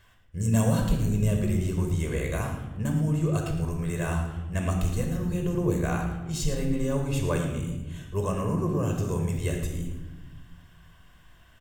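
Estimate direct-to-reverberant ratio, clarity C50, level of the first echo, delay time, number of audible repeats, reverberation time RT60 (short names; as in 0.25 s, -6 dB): 2.0 dB, 4.5 dB, -11.5 dB, 0.111 s, 1, 1.1 s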